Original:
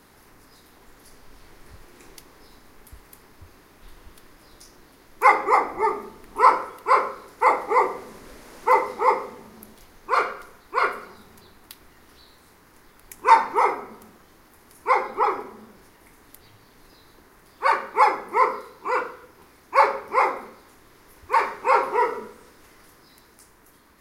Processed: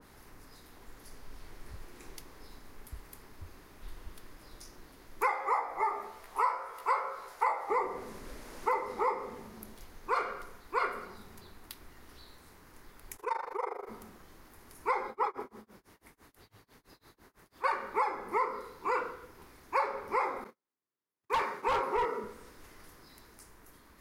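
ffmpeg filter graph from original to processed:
-filter_complex "[0:a]asettb=1/sr,asplit=3[s0][s1][s2];[s0]atrim=end=5.314[s3];[s1]atrim=start=5.31:end=7.7,asetpts=PTS-STARTPTS,afade=t=in:d=0.004:c=qsin,afade=t=out:st=2.386:d=0.004:c=qsin,lowshelf=f=430:t=q:w=1.5:g=-12.5,asplit=2[s4][s5];[s5]adelay=15,volume=0.668[s6];[s4][s6]amix=inputs=2:normalize=0,atrim=end_sample=105399[s7];[s2]atrim=start=7.696[s8];[s3][s7]acrossfade=d=0.004:c1=hsin:c2=qsin[s9];[s9][s8]acrossfade=d=0.004:c1=qsin:c2=hsin,asettb=1/sr,asplit=3[s10][s11][s12];[s10]atrim=end=13.164[s13];[s11]atrim=start=13.16:end=13.89,asetpts=PTS-STARTPTS,afade=t=in:d=0.004:c=qsin,afade=t=out:st=0.726:d=0.004:c=qsin,lowshelf=f=320:t=q:w=3:g=-11.5,tremolo=f=25:d=0.919,acompressor=threshold=0.0178:ratio=2:attack=3.2:release=140:knee=1:detection=peak[s14];[s12]atrim=start=13.886[s15];[s13][s14]acrossfade=d=0.004:c1=hsin:c2=qsin[s16];[s16][s15]acrossfade=d=0.004:c1=qsin:c2=hsin,asettb=1/sr,asplit=3[s17][s18][s19];[s17]atrim=end=15.084[s20];[s18]atrim=start=15.08:end=17.64,asetpts=PTS-STARTPTS,afade=t=in:d=0.004:c=qsin,afade=t=out:st=2.556:d=0.004:c=qsin,highpass=f=78:p=1,tremolo=f=6:d=0.98[s21];[s19]atrim=start=17.636[s22];[s20][s21]acrossfade=d=0.004:c1=hsin:c2=qsin[s23];[s23][s22]acrossfade=d=0.004:c1=qsin:c2=hsin,asettb=1/sr,asplit=3[s24][s25][s26];[s24]atrim=end=20.444[s27];[s25]atrim=start=20.44:end=22.24,asetpts=PTS-STARTPTS,afade=t=in:d=0.004:c=qsin,afade=t=out:st=1.796:d=0.004:c=qsin,agate=range=0.01:threshold=0.00708:ratio=16:release=100:detection=peak,highpass=f=130:w=0.5412,highpass=f=130:w=1.3066,asoftclip=type=hard:threshold=0.15[s28];[s26]atrim=start=22.236[s29];[s27][s28]acrossfade=d=0.004:c1=hsin:c2=qsin[s30];[s30][s29]acrossfade=d=0.004:c1=qsin:c2=hsin,lowshelf=f=87:g=7,acompressor=threshold=0.0708:ratio=8,adynamicequalizer=threshold=0.00891:dfrequency=2200:dqfactor=0.7:tfrequency=2200:tqfactor=0.7:attack=5:release=100:ratio=0.375:range=2:mode=cutabove:tftype=highshelf,volume=0.668"

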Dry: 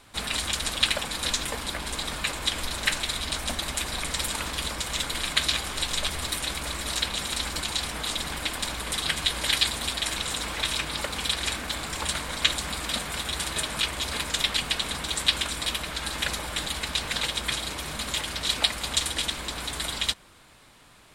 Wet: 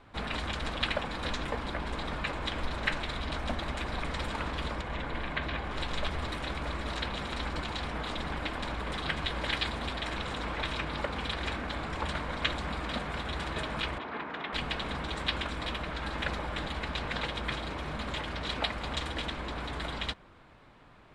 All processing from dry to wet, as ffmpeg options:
-filter_complex "[0:a]asettb=1/sr,asplit=3[s0][s1][s2];[s0]atrim=end=4.814[s3];[s1]atrim=start=4.81:end=5.71,asetpts=PTS-STARTPTS,afade=t=in:d=0.004:c=qsin,afade=t=out:st=0.896:d=0.004:c=qsin,bandreject=f=1300:w=12,acrossover=split=2900[s4][s5];[s5]acompressor=threshold=0.00794:ratio=4:attack=1:release=60[s6];[s4][s6]amix=inputs=2:normalize=0[s7];[s2]atrim=start=5.706[s8];[s3][s7]acrossfade=d=0.004:c1=hsin:c2=qsin[s9];[s9][s8]acrossfade=d=0.004:c1=qsin:c2=hsin,asettb=1/sr,asplit=3[s10][s11][s12];[s10]atrim=end=13.984[s13];[s11]atrim=start=13.98:end=14.53,asetpts=PTS-STARTPTS,afade=t=in:d=0.004:c=qsin,afade=t=out:st=0.546:d=0.004:c=qsin,highpass=240,lowpass=2000,equalizer=f=550:w=7.7:g=-10.5[s14];[s12]atrim=start=14.526[s15];[s13][s14]acrossfade=d=0.004:c1=hsin:c2=qsin[s16];[s16][s15]acrossfade=d=0.004:c1=qsin:c2=hsin,lowpass=f=2200:p=1,aemphasis=mode=reproduction:type=75fm"

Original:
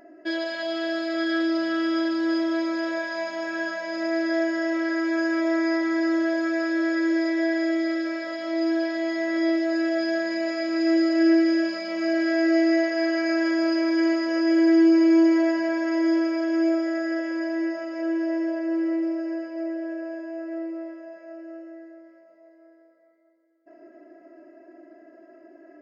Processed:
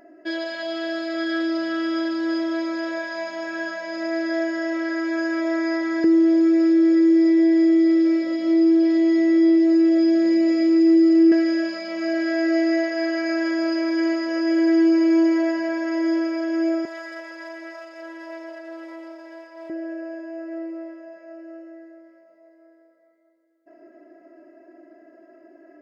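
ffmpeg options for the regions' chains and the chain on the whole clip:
-filter_complex "[0:a]asettb=1/sr,asplit=3[s0][s1][s2];[s0]atrim=end=6.044[s3];[s1]atrim=start=6.04:end=11.32,asetpts=PTS-STARTPTS,afade=t=in:d=0.004:c=qsin,afade=t=out:st=5.276:d=0.004:c=qsin,asuperstop=centerf=1500:order=8:qfactor=4,lowshelf=f=560:t=q:w=3:g=8,acompressor=threshold=0.178:ratio=2.5:attack=3.2:release=140:knee=1:detection=peak[s4];[s2]atrim=start=11.316[s5];[s3][s4]acrossfade=d=0.004:c1=hsin:c2=qsin[s6];[s6][s5]acrossfade=d=0.004:c1=qsin:c2=hsin,asettb=1/sr,asplit=3[s7][s8][s9];[s7]atrim=end=16.854[s10];[s8]atrim=start=16.85:end=19.7,asetpts=PTS-STARTPTS,afade=t=in:d=0.004:c=qsin,afade=t=out:st=2.846:d=0.004:c=qsin,aeval=exprs='if(lt(val(0),0),0.447*val(0),val(0))':c=same,highpass=640[s11];[s9]atrim=start=19.696[s12];[s10][s11]acrossfade=d=0.004:c1=hsin:c2=qsin[s13];[s13][s12]acrossfade=d=0.004:c1=qsin:c2=hsin"

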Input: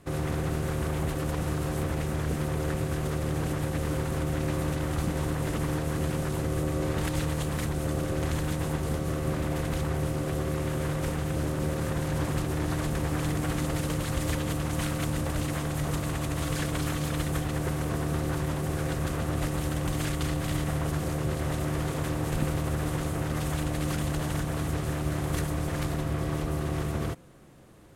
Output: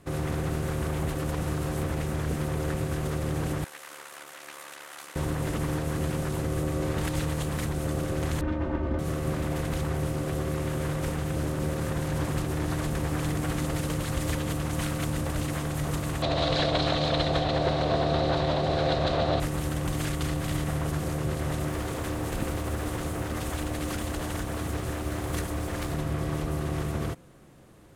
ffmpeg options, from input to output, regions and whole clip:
-filter_complex "[0:a]asettb=1/sr,asplit=3[s0][s1][s2];[s0]atrim=end=3.644[s3];[s1]atrim=start=3.64:end=5.16,asetpts=PTS-STARTPTS,afade=t=in:d=0.004:c=qsin,afade=t=out:st=1.516:d=0.004:c=qsin,highpass=1100,tremolo=f=72:d=0.667[s4];[s2]atrim=start=5.156[s5];[s3][s4]acrossfade=d=0.004:c1=hsin:c2=qsin[s6];[s6][s5]acrossfade=d=0.004:c1=qsin:c2=hsin,asettb=1/sr,asplit=3[s7][s8][s9];[s7]atrim=end=8.414[s10];[s8]atrim=start=8.41:end=8.99,asetpts=PTS-STARTPTS,afade=t=in:d=0.004:c=qsin,afade=t=out:st=0.576:d=0.004:c=qsin,aemphasis=mode=reproduction:type=75fm,aecho=1:1:3.3:0.71,atrim=end_sample=25578,adynamicsmooth=sensitivity=2:basefreq=2300[s11];[s9]atrim=start=8.986[s12];[s10][s11]acrossfade=d=0.004:c1=hsin:c2=qsin[s13];[s13][s12]acrossfade=d=0.004:c1=qsin:c2=hsin,asettb=1/sr,asplit=3[s14][s15][s16];[s14]atrim=end=16.224[s17];[s15]atrim=start=16.22:end=19.4,asetpts=PTS-STARTPTS,afade=t=in:d=0.004:c=qsin,afade=t=out:st=3.176:d=0.004:c=qsin,lowpass=f=4000:t=q:w=6.5,equalizer=f=650:t=o:w=0.88:g=14.5[s18];[s16]atrim=start=19.396[s19];[s17][s18]acrossfade=d=0.004:c1=hsin:c2=qsin[s20];[s20][s19]acrossfade=d=0.004:c1=qsin:c2=hsin,asettb=1/sr,asplit=3[s21][s22][s23];[s21]atrim=end=21.684[s24];[s22]atrim=start=21.68:end=25.91,asetpts=PTS-STARTPTS,afade=t=in:d=0.004:c=qsin,afade=t=out:st=4.226:d=0.004:c=qsin,acrusher=bits=8:mode=log:mix=0:aa=0.000001,bandreject=f=50:t=h:w=6,bandreject=f=100:t=h:w=6,bandreject=f=150:t=h:w=6,bandreject=f=200:t=h:w=6,bandreject=f=250:t=h:w=6[s25];[s23]atrim=start=25.906[s26];[s24][s25]acrossfade=d=0.004:c1=hsin:c2=qsin[s27];[s27][s26]acrossfade=d=0.004:c1=qsin:c2=hsin"

